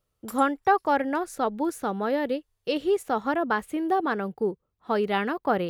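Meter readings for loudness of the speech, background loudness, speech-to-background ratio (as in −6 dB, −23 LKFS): −26.5 LKFS, −46.0 LKFS, 19.5 dB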